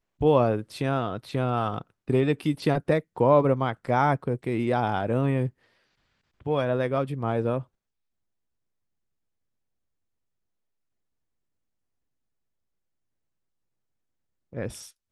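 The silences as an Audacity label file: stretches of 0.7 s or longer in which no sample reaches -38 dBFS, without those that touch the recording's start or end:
5.490000	6.460000	silence
7.620000	14.530000	silence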